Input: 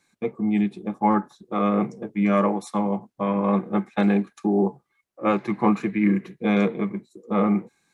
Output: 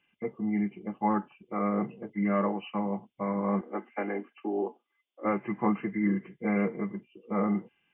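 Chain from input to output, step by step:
hearing-aid frequency compression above 2,000 Hz 4 to 1
0:03.61–0:05.25: elliptic high-pass filter 240 Hz, stop band 40 dB
level −7 dB

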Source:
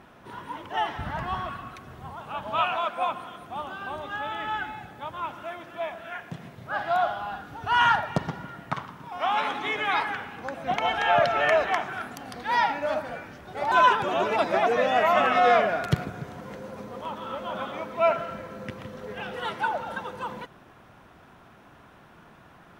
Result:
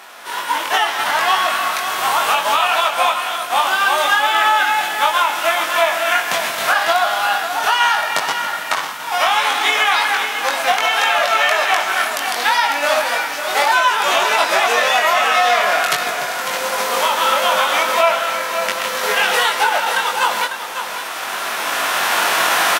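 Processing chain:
spectral envelope flattened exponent 0.6
camcorder AGC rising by 9.4 dB per second
high-pass filter 700 Hz 12 dB per octave
in parallel at +3 dB: brickwall limiter −18.5 dBFS, peak gain reduction 9.5 dB
on the sum: downward compressor, threshold −19 dBFS, peak gain reduction 8 dB
double-tracking delay 21 ms −3 dB
on a send: single-tap delay 549 ms −9 dB
on the sum: downsampling to 32,000 Hz
level +5.5 dB

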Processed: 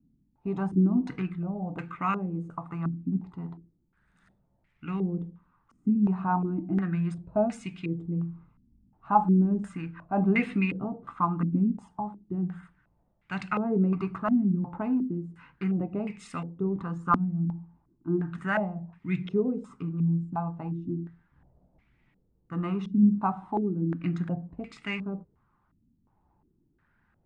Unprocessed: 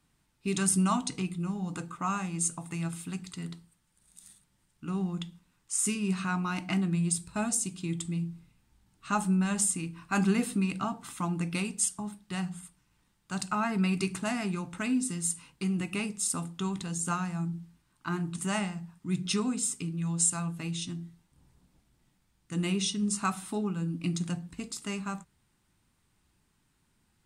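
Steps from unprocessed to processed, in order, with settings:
phase shifter 0.95 Hz, delay 1.7 ms, feedback 21%
low-pass on a step sequencer 2.8 Hz 250–2,200 Hz

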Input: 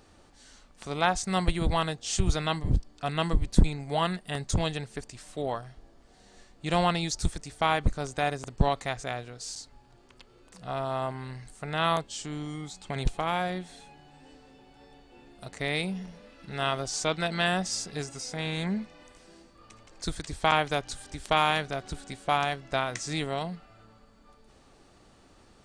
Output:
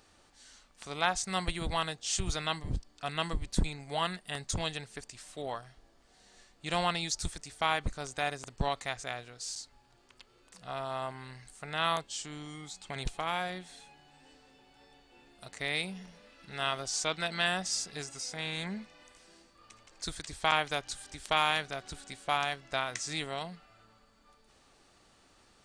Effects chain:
tilt shelving filter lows −4.5 dB, about 830 Hz
level −5 dB

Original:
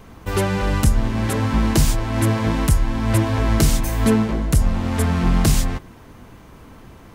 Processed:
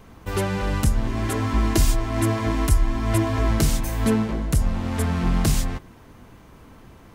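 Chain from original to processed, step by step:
0:01.07–0:03.51: comb filter 2.9 ms, depth 60%
level −4 dB

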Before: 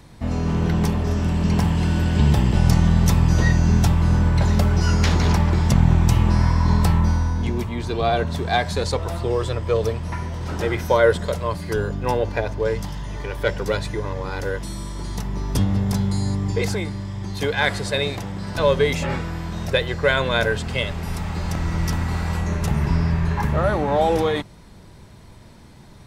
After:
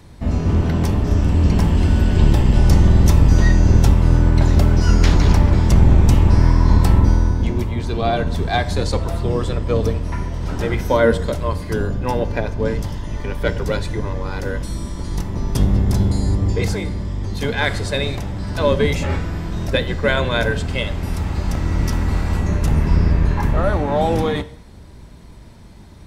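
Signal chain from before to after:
sub-octave generator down 1 octave, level +3 dB
convolution reverb RT60 0.75 s, pre-delay 3 ms, DRR 13 dB

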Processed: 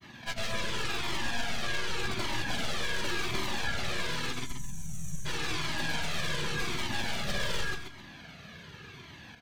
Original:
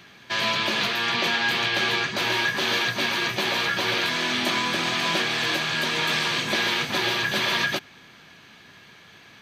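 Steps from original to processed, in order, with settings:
wavefolder on the positive side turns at −24.5 dBFS
low-shelf EQ 360 Hz +9 dB
downward compressor 6 to 1, threshold −29 dBFS, peak gain reduction 10.5 dB
gain on a spectral selection 0:04.39–0:05.26, 210–5,600 Hz −25 dB
granular cloud, pitch spread up and down by 0 semitones
repeating echo 132 ms, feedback 28%, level −6 dB
flanger whose copies keep moving one way falling 0.88 Hz
level +4 dB

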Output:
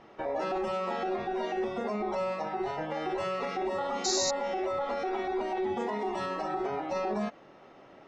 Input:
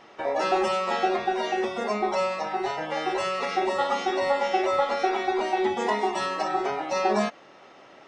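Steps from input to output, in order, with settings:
spectral tilt −2.5 dB per octave
brickwall limiter −19.5 dBFS, peak gain reduction 9.5 dB
sound drawn into the spectrogram noise, 0:04.04–0:04.31, 3,700–7,400 Hz −26 dBFS
level −4.5 dB

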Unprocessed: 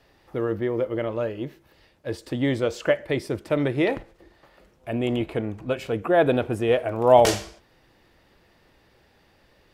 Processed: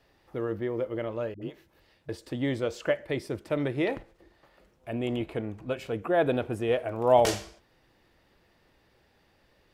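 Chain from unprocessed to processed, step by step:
0:01.34–0:02.09: all-pass dispersion highs, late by 76 ms, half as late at 350 Hz
level −5.5 dB

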